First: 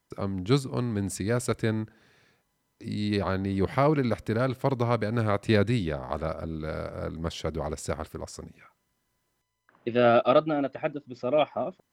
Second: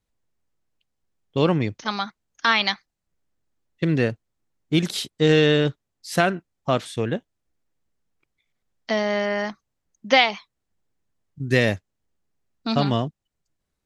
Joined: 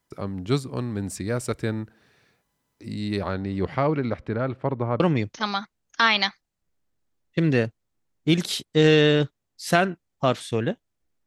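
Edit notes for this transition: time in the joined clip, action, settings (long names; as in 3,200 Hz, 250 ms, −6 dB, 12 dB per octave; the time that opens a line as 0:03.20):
first
0:03.28–0:05.00: low-pass filter 8,000 Hz → 1,400 Hz
0:05.00: continue with second from 0:01.45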